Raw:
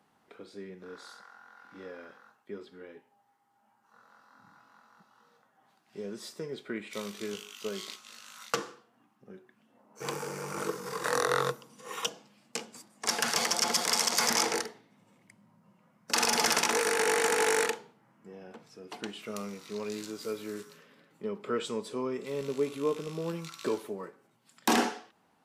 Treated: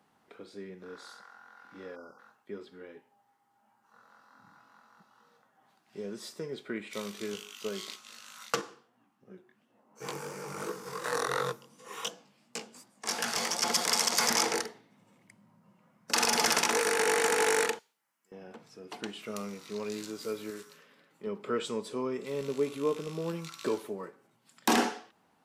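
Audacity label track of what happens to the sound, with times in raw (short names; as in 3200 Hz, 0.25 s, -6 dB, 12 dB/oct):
1.960000	2.190000	spectral delete 1500–4600 Hz
8.610000	13.630000	chorus 2.8 Hz, delay 16 ms, depth 6 ms
17.790000	18.320000	differentiator
20.500000	21.270000	low shelf 380 Hz -7 dB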